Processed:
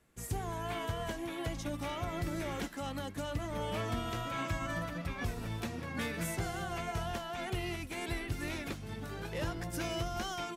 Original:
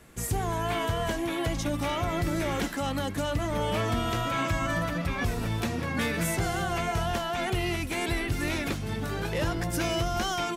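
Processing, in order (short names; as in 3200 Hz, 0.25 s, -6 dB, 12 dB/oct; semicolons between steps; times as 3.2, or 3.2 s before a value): upward expander 1.5:1, over -44 dBFS; gain -6.5 dB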